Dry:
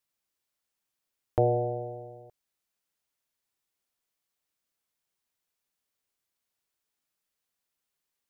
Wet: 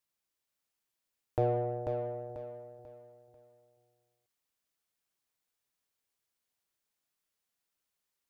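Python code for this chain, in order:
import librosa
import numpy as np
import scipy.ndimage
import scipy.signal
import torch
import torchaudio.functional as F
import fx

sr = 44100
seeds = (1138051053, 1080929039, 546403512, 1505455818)

p1 = 10.0 ** (-29.0 / 20.0) * np.tanh(x / 10.0 ** (-29.0 / 20.0))
p2 = x + (p1 * librosa.db_to_amplitude(-5.0))
p3 = fx.echo_feedback(p2, sr, ms=491, feedback_pct=35, wet_db=-5)
y = p3 * librosa.db_to_amplitude(-6.5)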